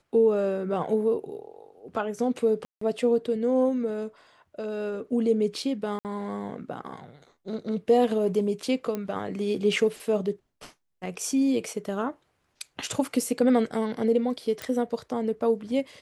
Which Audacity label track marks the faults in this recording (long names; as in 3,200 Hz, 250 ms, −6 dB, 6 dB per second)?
2.650000	2.810000	drop-out 164 ms
5.990000	6.050000	drop-out 58 ms
8.950000	8.950000	click −18 dBFS
14.620000	14.620000	click